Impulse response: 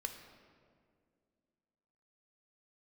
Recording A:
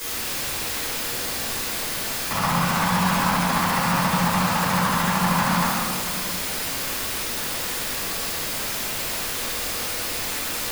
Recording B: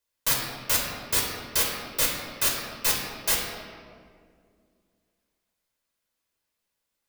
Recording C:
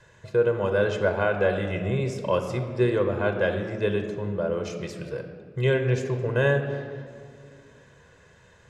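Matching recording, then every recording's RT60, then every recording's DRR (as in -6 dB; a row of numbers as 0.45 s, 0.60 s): C; 2.1 s, 2.1 s, 2.2 s; -11.5 dB, -2.0 dB, 5.0 dB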